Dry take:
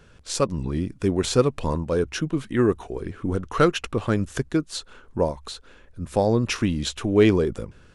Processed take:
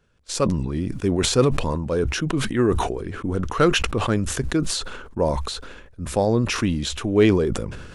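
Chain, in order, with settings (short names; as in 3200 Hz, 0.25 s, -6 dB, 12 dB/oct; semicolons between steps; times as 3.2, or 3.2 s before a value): gate -39 dBFS, range -13 dB; sustainer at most 43 dB/s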